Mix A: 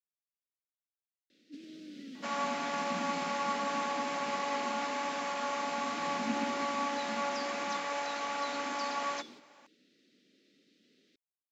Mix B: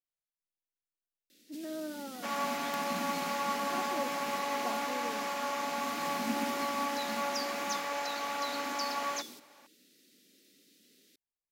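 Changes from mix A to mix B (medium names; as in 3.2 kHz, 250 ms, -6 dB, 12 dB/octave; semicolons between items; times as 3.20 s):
speech: remove vowel filter i; first sound: remove distance through air 170 m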